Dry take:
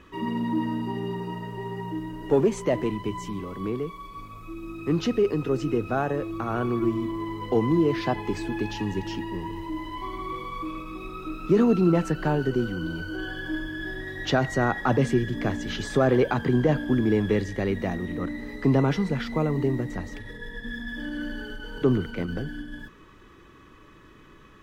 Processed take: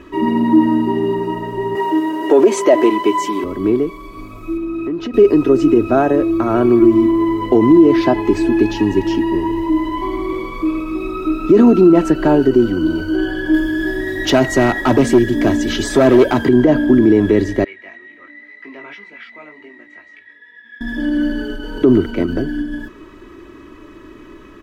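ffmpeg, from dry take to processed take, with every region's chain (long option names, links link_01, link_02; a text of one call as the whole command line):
ffmpeg -i in.wav -filter_complex "[0:a]asettb=1/sr,asplit=3[link_01][link_02][link_03];[link_01]atrim=end=1.754[link_04];[link_02]atrim=start=1.75:end=3.44,asetpts=PTS-STARTPTS,afade=type=in:duration=0.004:curve=qsin,afade=type=out:start_time=1.686:duration=0.004:curve=qsin,highpass=450,acontrast=69[link_05];[link_03]atrim=start=3.436[link_06];[link_04][link_05]acrossfade=duration=0.004:curve1=hsin:curve2=qsin[link_07];[link_07][link_06]acrossfade=duration=0.004:curve1=qsin:curve2=hsin,asettb=1/sr,asplit=3[link_08][link_09][link_10];[link_08]atrim=end=4.574[link_11];[link_09]atrim=start=4.57:end=5.14,asetpts=PTS-STARTPTS,afade=type=in:duration=0.004:curve=qsin,afade=type=out:start_time=0.566:duration=0.004:curve=qsin,bass=frequency=250:gain=-2,treble=frequency=4000:gain=-8,acompressor=threshold=-35dB:ratio=4:attack=3.2:release=140:knee=1:detection=peak[link_12];[link_10]atrim=start=5.136[link_13];[link_11][link_12]acrossfade=duration=0.004:curve1=hsin:curve2=qsin[link_14];[link_14][link_13]acrossfade=duration=0.004:curve1=qsin:curve2=hsin,asettb=1/sr,asplit=3[link_15][link_16][link_17];[link_15]atrim=end=13.544[link_18];[link_16]atrim=start=13.54:end=16.49,asetpts=PTS-STARTPTS,afade=type=in:duration=0.004:curve=qsin,afade=type=out:start_time=2.946:duration=0.004:curve=qsin,highshelf=frequency=4200:gain=8.5,asoftclip=type=hard:threshold=-19.5dB[link_19];[link_17]atrim=start=16.486[link_20];[link_18][link_19]acrossfade=duration=0.004:curve1=hsin:curve2=qsin[link_21];[link_21][link_20]acrossfade=duration=0.004:curve1=qsin:curve2=hsin,asettb=1/sr,asplit=3[link_22][link_23][link_24];[link_22]atrim=end=17.644[link_25];[link_23]atrim=start=17.64:end=20.81,asetpts=PTS-STARTPTS,afade=type=in:duration=0.004:curve=qsin,afade=type=out:start_time=3.166:duration=0.004:curve=qsin,bandpass=frequency=2200:width_type=q:width=3.8,flanger=delay=18:depth=2.7:speed=2[link_26];[link_24]atrim=start=20.806[link_27];[link_25][link_26]acrossfade=duration=0.004:curve1=hsin:curve2=qsin[link_28];[link_28][link_27]acrossfade=duration=0.004:curve1=qsin:curve2=hsin,equalizer=frequency=360:width_type=o:width=2.1:gain=7.5,aecho=1:1:3.1:0.53,alimiter=level_in=7.5dB:limit=-1dB:release=50:level=0:latency=1,volume=-1dB" out.wav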